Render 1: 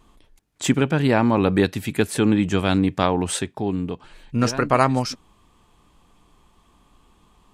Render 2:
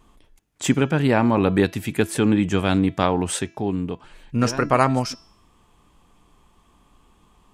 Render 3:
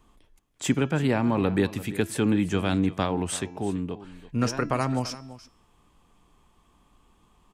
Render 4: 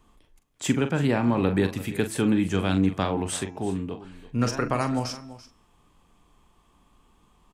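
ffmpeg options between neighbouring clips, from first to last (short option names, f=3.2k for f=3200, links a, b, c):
-af "equalizer=f=4.1k:t=o:w=0.39:g=-3.5,bandreject=f=332.3:t=h:w=4,bandreject=f=664.6:t=h:w=4,bandreject=f=996.9:t=h:w=4,bandreject=f=1.3292k:t=h:w=4,bandreject=f=1.6615k:t=h:w=4,bandreject=f=1.9938k:t=h:w=4,bandreject=f=2.3261k:t=h:w=4,bandreject=f=2.6584k:t=h:w=4,bandreject=f=2.9907k:t=h:w=4,bandreject=f=3.323k:t=h:w=4,bandreject=f=3.6553k:t=h:w=4,bandreject=f=3.9876k:t=h:w=4,bandreject=f=4.3199k:t=h:w=4,bandreject=f=4.6522k:t=h:w=4,bandreject=f=4.9845k:t=h:w=4,bandreject=f=5.3168k:t=h:w=4,bandreject=f=5.6491k:t=h:w=4,bandreject=f=5.9814k:t=h:w=4,bandreject=f=6.3137k:t=h:w=4,bandreject=f=6.646k:t=h:w=4,bandreject=f=6.9783k:t=h:w=4"
-filter_complex "[0:a]acrossover=split=320|3000[a][b][c];[b]acompressor=threshold=-19dB:ratio=6[d];[a][d][c]amix=inputs=3:normalize=0,aecho=1:1:337:0.15,volume=-4.5dB"
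-filter_complex "[0:a]asplit=2[a][b];[b]adelay=42,volume=-9.5dB[c];[a][c]amix=inputs=2:normalize=0"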